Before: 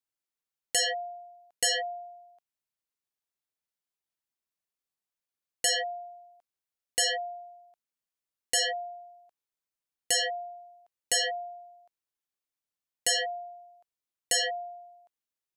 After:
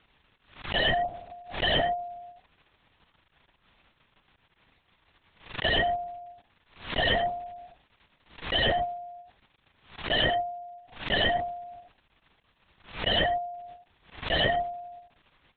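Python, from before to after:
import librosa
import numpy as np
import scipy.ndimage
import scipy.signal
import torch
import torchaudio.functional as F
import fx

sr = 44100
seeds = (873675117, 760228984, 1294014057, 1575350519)

p1 = fx.level_steps(x, sr, step_db=19)
p2 = x + (p1 * librosa.db_to_amplitude(1.5))
p3 = fx.dmg_crackle(p2, sr, seeds[0], per_s=140.0, level_db=-43.0)
p4 = p3 + fx.echo_single(p3, sr, ms=88, db=-16.0, dry=0)
p5 = fx.lpc_vocoder(p4, sr, seeds[1], excitation='whisper', order=8)
p6 = fx.pre_swell(p5, sr, db_per_s=130.0)
y = p6 * librosa.db_to_amplitude(3.0)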